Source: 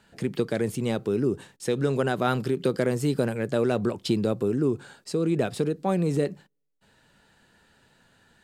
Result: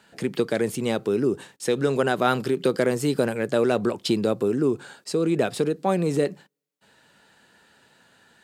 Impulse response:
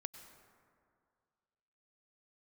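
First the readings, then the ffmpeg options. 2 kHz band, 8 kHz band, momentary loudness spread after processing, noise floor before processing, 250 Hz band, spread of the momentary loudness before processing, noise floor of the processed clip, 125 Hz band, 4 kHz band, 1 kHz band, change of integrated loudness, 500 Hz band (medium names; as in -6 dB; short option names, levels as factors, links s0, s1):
+4.5 dB, +4.5 dB, 5 LU, -64 dBFS, +1.5 dB, 4 LU, -62 dBFS, -2.0 dB, +4.5 dB, +4.0 dB, +2.5 dB, +3.0 dB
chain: -af "highpass=f=260:p=1,volume=1.68"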